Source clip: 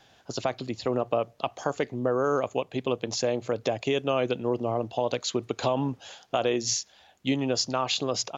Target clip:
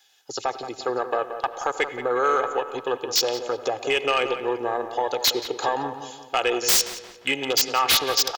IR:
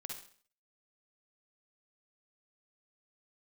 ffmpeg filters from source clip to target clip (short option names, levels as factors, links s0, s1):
-filter_complex "[0:a]afwtdn=0.0178,aderivative,aecho=1:1:2.4:0.55,aeval=exprs='0.2*sin(PI/2*7.94*val(0)/0.2)':c=same,asplit=2[s0][s1];[s1]adelay=176,lowpass=f=2700:p=1,volume=0.316,asplit=2[s2][s3];[s3]adelay=176,lowpass=f=2700:p=1,volume=0.48,asplit=2[s4][s5];[s5]adelay=176,lowpass=f=2700:p=1,volume=0.48,asplit=2[s6][s7];[s7]adelay=176,lowpass=f=2700:p=1,volume=0.48,asplit=2[s8][s9];[s9]adelay=176,lowpass=f=2700:p=1,volume=0.48[s10];[s0][s2][s4][s6][s8][s10]amix=inputs=6:normalize=0,asplit=2[s11][s12];[1:a]atrim=start_sample=2205,asetrate=27783,aresample=44100,lowpass=3800[s13];[s12][s13]afir=irnorm=-1:irlink=0,volume=0.266[s14];[s11][s14]amix=inputs=2:normalize=0"